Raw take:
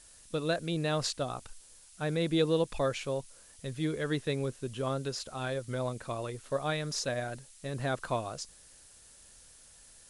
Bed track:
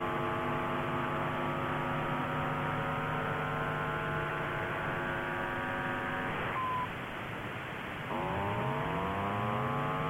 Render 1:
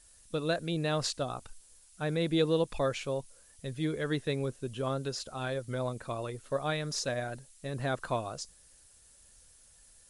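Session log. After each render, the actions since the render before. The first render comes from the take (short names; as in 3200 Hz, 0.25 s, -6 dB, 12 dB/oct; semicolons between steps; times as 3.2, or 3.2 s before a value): denoiser 6 dB, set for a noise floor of -57 dBFS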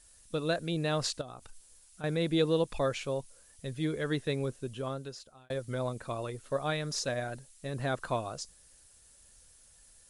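1.21–2.04 compressor 3:1, threshold -44 dBFS; 4.57–5.5 fade out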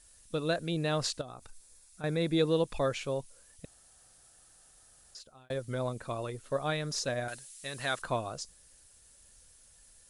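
1.25–2.48 notch 3000 Hz, Q 7.6; 3.65–5.15 room tone; 7.28–8.02 tilt shelf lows -9.5 dB, about 920 Hz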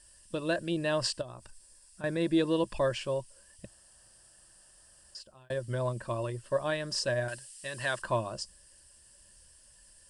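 ripple EQ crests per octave 1.3, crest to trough 10 dB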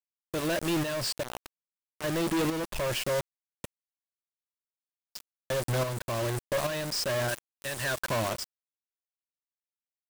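companded quantiser 2-bit; tremolo saw up 1.2 Hz, depth 55%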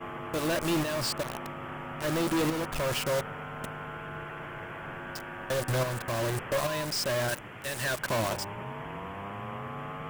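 add bed track -5.5 dB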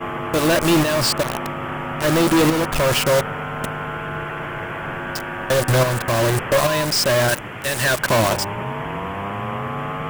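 gain +12 dB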